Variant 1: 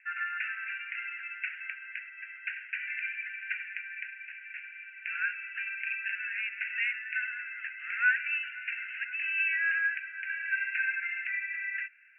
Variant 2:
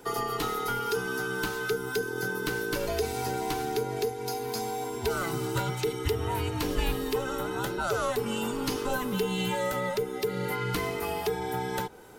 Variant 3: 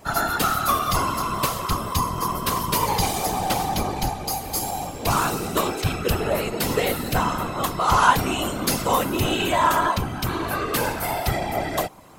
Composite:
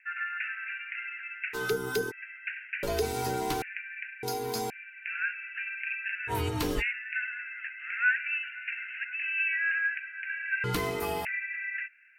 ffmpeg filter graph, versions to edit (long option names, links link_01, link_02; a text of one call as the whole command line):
ffmpeg -i take0.wav -i take1.wav -filter_complex "[1:a]asplit=5[link_01][link_02][link_03][link_04][link_05];[0:a]asplit=6[link_06][link_07][link_08][link_09][link_10][link_11];[link_06]atrim=end=1.55[link_12];[link_01]atrim=start=1.53:end=2.12[link_13];[link_07]atrim=start=2.1:end=2.832[link_14];[link_02]atrim=start=2.828:end=3.622[link_15];[link_08]atrim=start=3.618:end=4.232[link_16];[link_03]atrim=start=4.228:end=4.702[link_17];[link_09]atrim=start=4.698:end=6.33[link_18];[link_04]atrim=start=6.27:end=6.83[link_19];[link_10]atrim=start=6.77:end=10.642[link_20];[link_05]atrim=start=10.638:end=11.252[link_21];[link_11]atrim=start=11.248[link_22];[link_12][link_13]acrossfade=duration=0.02:curve1=tri:curve2=tri[link_23];[link_23][link_14]acrossfade=duration=0.02:curve1=tri:curve2=tri[link_24];[link_24][link_15]acrossfade=duration=0.004:curve1=hsin:curve2=hsin[link_25];[link_25][link_16]acrossfade=duration=0.004:curve1=hsin:curve2=hsin[link_26];[link_26][link_17]acrossfade=duration=0.004:curve1=hsin:curve2=hsin[link_27];[link_27][link_18]acrossfade=duration=0.004:curve1=hsin:curve2=hsin[link_28];[link_28][link_19]acrossfade=duration=0.06:curve1=tri:curve2=tri[link_29];[link_29][link_20]acrossfade=duration=0.06:curve1=tri:curve2=tri[link_30];[link_30][link_21]acrossfade=duration=0.004:curve1=hsin:curve2=hsin[link_31];[link_31][link_22]acrossfade=duration=0.004:curve1=hsin:curve2=hsin" out.wav